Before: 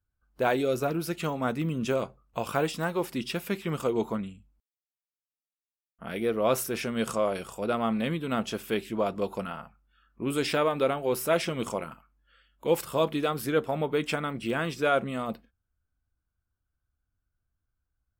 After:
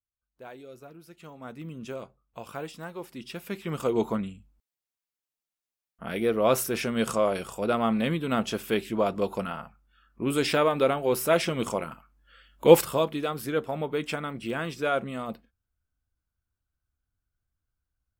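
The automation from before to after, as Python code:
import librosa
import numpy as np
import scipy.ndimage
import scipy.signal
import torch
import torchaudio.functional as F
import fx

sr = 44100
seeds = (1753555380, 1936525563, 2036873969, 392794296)

y = fx.gain(x, sr, db=fx.line((1.06, -19.0), (1.68, -9.5), (3.13, -9.5), (3.98, 2.5), (11.9, 2.5), (12.74, 10.0), (13.07, -2.0)))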